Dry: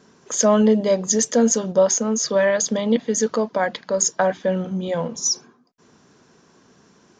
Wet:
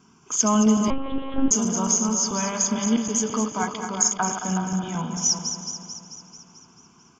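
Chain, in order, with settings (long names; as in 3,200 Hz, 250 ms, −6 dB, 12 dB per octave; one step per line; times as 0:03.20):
feedback delay that plays each chunk backwards 110 ms, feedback 78%, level −8 dB
phaser with its sweep stopped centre 2,700 Hz, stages 8
far-end echo of a speakerphone 370 ms, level −8 dB
0:00.90–0:01.51: one-pitch LPC vocoder at 8 kHz 270 Hz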